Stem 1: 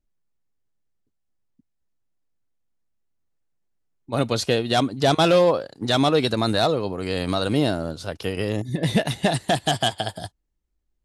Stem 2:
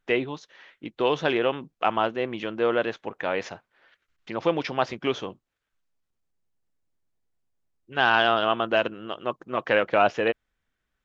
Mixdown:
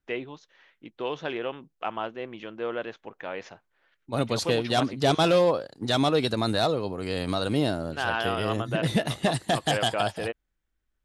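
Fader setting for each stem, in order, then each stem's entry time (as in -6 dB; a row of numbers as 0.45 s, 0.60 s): -4.0 dB, -8.0 dB; 0.00 s, 0.00 s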